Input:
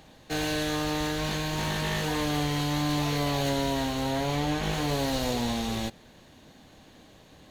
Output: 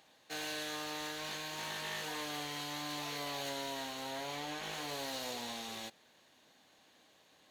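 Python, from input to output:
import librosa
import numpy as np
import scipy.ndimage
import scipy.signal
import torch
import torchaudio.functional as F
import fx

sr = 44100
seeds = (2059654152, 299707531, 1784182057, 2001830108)

y = fx.highpass(x, sr, hz=860.0, slope=6)
y = F.gain(torch.from_numpy(y), -7.5).numpy()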